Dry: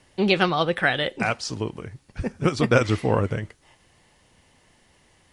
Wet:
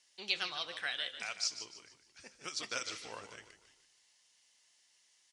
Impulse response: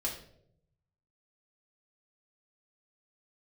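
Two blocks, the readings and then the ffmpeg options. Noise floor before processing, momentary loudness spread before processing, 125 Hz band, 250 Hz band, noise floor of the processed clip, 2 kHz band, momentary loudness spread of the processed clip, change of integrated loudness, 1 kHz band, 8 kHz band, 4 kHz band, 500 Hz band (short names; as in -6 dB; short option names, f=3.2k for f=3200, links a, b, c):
-61 dBFS, 13 LU, -38.5 dB, -32.0 dB, -71 dBFS, -15.0 dB, 19 LU, -14.5 dB, -20.5 dB, -2.0 dB, -7.0 dB, -26.5 dB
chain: -filter_complex "[0:a]bandpass=f=6k:t=q:w=1.6:csg=0,asoftclip=type=tanh:threshold=-10dB,asplit=5[a][b][c][d][e];[b]adelay=149,afreqshift=-32,volume=-11dB[f];[c]adelay=298,afreqshift=-64,volume=-19.6dB[g];[d]adelay=447,afreqshift=-96,volume=-28.3dB[h];[e]adelay=596,afreqshift=-128,volume=-36.9dB[i];[a][f][g][h][i]amix=inputs=5:normalize=0,asplit=2[j][k];[1:a]atrim=start_sample=2205,lowpass=8.3k[l];[k][l]afir=irnorm=-1:irlink=0,volume=-15.5dB[m];[j][m]amix=inputs=2:normalize=0,volume=-2dB"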